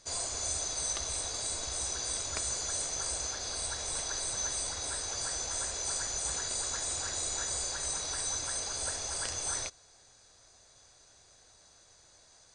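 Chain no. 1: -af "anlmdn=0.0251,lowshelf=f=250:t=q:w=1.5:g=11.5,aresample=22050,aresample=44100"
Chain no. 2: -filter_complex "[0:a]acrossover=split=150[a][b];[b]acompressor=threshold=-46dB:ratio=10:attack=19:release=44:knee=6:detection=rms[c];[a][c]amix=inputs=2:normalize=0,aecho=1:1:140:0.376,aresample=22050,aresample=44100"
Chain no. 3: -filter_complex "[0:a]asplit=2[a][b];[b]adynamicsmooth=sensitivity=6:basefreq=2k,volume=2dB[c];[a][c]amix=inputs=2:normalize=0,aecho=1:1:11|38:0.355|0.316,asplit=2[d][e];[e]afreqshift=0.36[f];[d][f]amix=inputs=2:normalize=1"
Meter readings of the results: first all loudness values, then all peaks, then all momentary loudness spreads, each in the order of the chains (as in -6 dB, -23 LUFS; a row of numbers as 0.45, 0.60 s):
-32.0, -42.5, -34.5 LUFS; -16.5, -30.0, -16.0 dBFS; 2, 15, 4 LU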